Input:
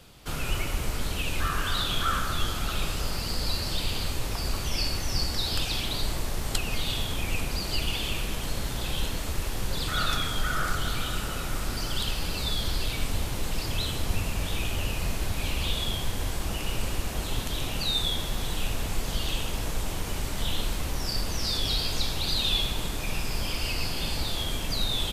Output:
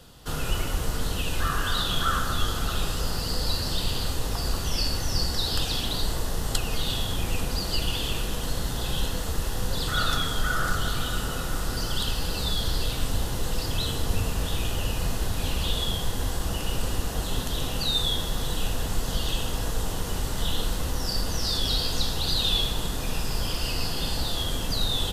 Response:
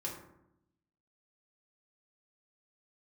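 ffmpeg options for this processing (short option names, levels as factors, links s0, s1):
-filter_complex "[0:a]equalizer=f=2300:t=o:w=0.21:g=-13,asplit=2[s0][s1];[1:a]atrim=start_sample=2205,asetrate=61740,aresample=44100[s2];[s1][s2]afir=irnorm=-1:irlink=0,volume=0.531[s3];[s0][s3]amix=inputs=2:normalize=0"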